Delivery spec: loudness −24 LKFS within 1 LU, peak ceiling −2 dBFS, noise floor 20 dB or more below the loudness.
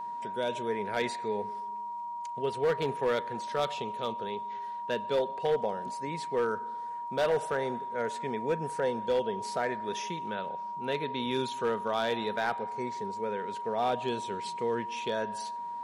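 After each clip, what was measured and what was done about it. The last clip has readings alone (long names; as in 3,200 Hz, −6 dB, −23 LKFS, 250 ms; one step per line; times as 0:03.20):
share of clipped samples 0.7%; peaks flattened at −21.5 dBFS; interfering tone 950 Hz; level of the tone −35 dBFS; integrated loudness −32.5 LKFS; sample peak −21.5 dBFS; target loudness −24.0 LKFS
→ clipped peaks rebuilt −21.5 dBFS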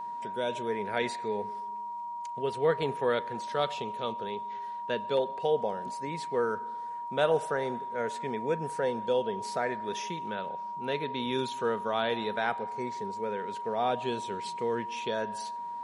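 share of clipped samples 0.0%; interfering tone 950 Hz; level of the tone −35 dBFS
→ notch filter 950 Hz, Q 30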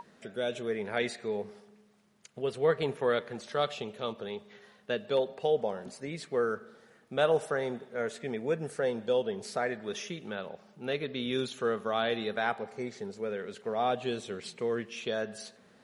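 interfering tone none found; integrated loudness −33.0 LKFS; sample peak −13.5 dBFS; target loudness −24.0 LKFS
→ level +9 dB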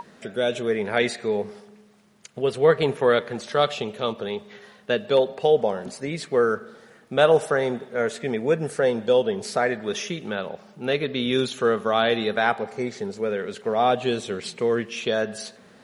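integrated loudness −24.0 LKFS; sample peak −4.5 dBFS; background noise floor −53 dBFS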